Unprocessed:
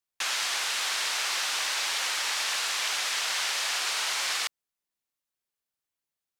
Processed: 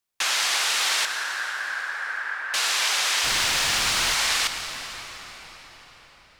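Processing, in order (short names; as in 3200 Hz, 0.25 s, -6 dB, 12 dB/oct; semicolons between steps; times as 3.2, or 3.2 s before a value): 1.05–2.54 ladder low-pass 1700 Hz, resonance 80%; 3.23–4.14 added noise pink -42 dBFS; reverb RT60 5.5 s, pre-delay 95 ms, DRR 6.5 dB; gain +5.5 dB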